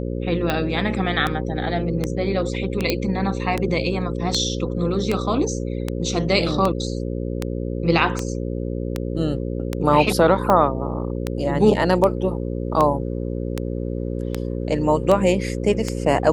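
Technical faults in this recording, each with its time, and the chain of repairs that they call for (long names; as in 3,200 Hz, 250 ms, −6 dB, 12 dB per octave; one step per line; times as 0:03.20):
mains buzz 60 Hz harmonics 9 −26 dBFS
scratch tick 78 rpm −8 dBFS
0:02.90: click −5 dBFS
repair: click removal
hum removal 60 Hz, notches 9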